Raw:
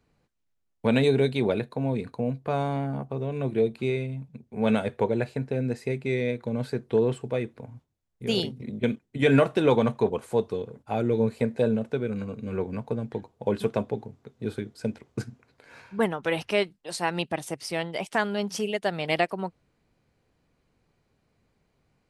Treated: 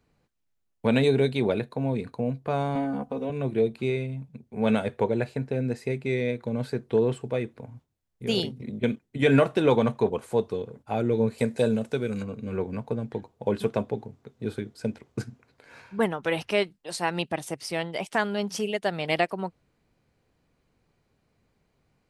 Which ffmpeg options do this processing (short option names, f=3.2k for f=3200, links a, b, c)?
-filter_complex "[0:a]asettb=1/sr,asplit=3[a][b][c];[a]atrim=end=2.754[d];[b]atrim=start=2.75:end=3.3,asetpts=PTS-STARTPTS,afade=t=in:d=0.004:c=qsin,afade=t=out:st=0.546:d=0.004:c=qsin,aecho=1:1:4:0.9,atrim=end_sample=24255[e];[c]atrim=start=3.296[f];[d][e]acrossfade=d=0.004:c1=hsin:c2=qsin[g];[g][f]acrossfade=d=0.004:c1=qsin:c2=hsin,asettb=1/sr,asplit=3[h][i][j];[h]atrim=end=11.384[k];[i]atrim=start=11.38:end=12.23,asetpts=PTS-STARTPTS,afade=t=in:d=0.004:c=qsin,afade=t=out:st=0.846:d=0.004:c=qsin,equalizer=f=8.8k:w=0.43:g=12.5[l];[j]atrim=start=12.226[m];[k][l]acrossfade=d=0.004:c1=hsin:c2=qsin[n];[n][m]acrossfade=d=0.004:c1=qsin:c2=hsin"